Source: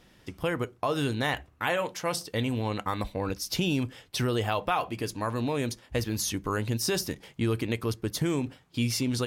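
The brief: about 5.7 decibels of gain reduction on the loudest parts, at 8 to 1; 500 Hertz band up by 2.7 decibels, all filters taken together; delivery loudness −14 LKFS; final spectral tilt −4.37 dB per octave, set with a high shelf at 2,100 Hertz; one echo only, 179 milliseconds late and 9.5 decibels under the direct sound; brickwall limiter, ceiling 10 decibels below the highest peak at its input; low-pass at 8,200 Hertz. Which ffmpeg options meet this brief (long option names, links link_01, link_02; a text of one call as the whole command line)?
ffmpeg -i in.wav -af "lowpass=8200,equalizer=frequency=500:width_type=o:gain=3,highshelf=frequency=2100:gain=3.5,acompressor=threshold=-27dB:ratio=8,alimiter=level_in=1dB:limit=-24dB:level=0:latency=1,volume=-1dB,aecho=1:1:179:0.335,volume=21dB" out.wav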